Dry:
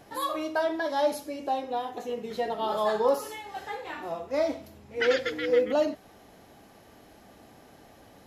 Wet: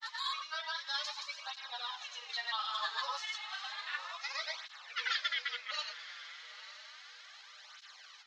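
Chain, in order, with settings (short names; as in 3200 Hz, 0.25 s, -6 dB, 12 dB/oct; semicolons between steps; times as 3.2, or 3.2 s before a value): elliptic band-pass 1200–6400 Hz, stop band 60 dB; bell 4100 Hz +9 dB 0.74 oct; compressor 1.5:1, threshold -46 dBFS, peak gain reduction 8 dB; grains, pitch spread up and down by 0 st; on a send: diffused feedback echo 0.925 s, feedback 41%, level -13 dB; on the sum: tape flanging out of phase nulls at 0.32 Hz, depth 6.6 ms; gain +8 dB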